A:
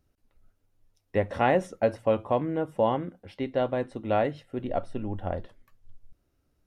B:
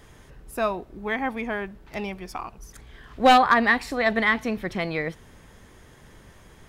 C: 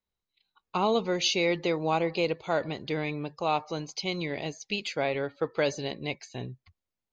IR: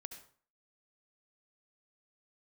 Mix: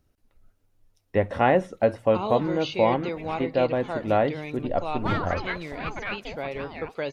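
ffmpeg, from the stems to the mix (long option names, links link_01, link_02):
-filter_complex "[0:a]volume=3dB,asplit=2[link_01][link_02];[1:a]aeval=exprs='val(0)*sin(2*PI*420*n/s+420*0.55/3.9*sin(2*PI*3.9*n/s))':channel_layout=same,adelay=1800,volume=-8dB[link_03];[2:a]adelay=1400,volume=-4dB[link_04];[link_02]apad=whole_len=374156[link_05];[link_03][link_05]sidechaincompress=threshold=-25dB:ratio=8:attack=42:release=546[link_06];[link_01][link_06][link_04]amix=inputs=3:normalize=0,acrossover=split=3900[link_07][link_08];[link_08]acompressor=threshold=-55dB:ratio=4:attack=1:release=60[link_09];[link_07][link_09]amix=inputs=2:normalize=0"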